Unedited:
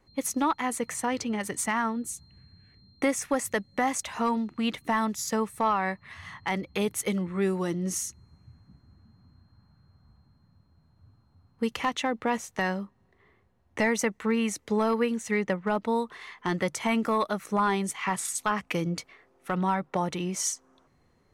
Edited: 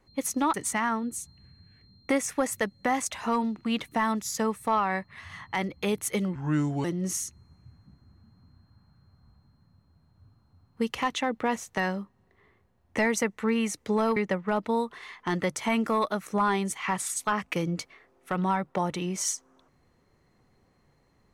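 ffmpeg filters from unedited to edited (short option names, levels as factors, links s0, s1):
-filter_complex "[0:a]asplit=5[s0][s1][s2][s3][s4];[s0]atrim=end=0.542[s5];[s1]atrim=start=1.468:end=7.284[s6];[s2]atrim=start=7.28:end=7.66,asetpts=PTS-STARTPTS,asetrate=33957,aresample=44100[s7];[s3]atrim=start=7.656:end=14.982[s8];[s4]atrim=start=15.348[s9];[s5][s6]acrossfade=d=0.004:c1=hsin:c2=hsin[s10];[s10][s7]acrossfade=d=0.004:c1=hsin:c2=hsin[s11];[s11][s8]acrossfade=d=0.004:c1=hsin:c2=hsin[s12];[s12][s9]acrossfade=d=0.004:c1=hsin:c2=hsin"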